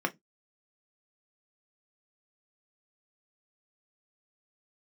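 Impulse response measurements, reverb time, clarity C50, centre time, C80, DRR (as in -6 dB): no single decay rate, 25.5 dB, 7 ms, 36.0 dB, 5.5 dB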